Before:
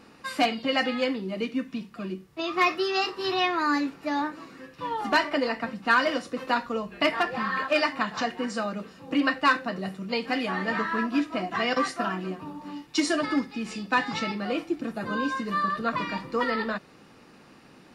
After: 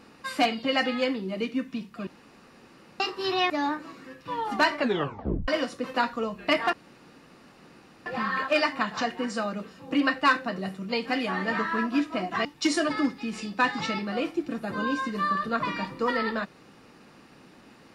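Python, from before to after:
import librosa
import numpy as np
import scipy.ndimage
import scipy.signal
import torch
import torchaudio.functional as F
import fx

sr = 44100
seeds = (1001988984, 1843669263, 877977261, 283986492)

y = fx.edit(x, sr, fx.room_tone_fill(start_s=2.07, length_s=0.93),
    fx.cut(start_s=3.5, length_s=0.53),
    fx.tape_stop(start_s=5.31, length_s=0.7),
    fx.insert_room_tone(at_s=7.26, length_s=1.33),
    fx.cut(start_s=11.65, length_s=1.13), tone=tone)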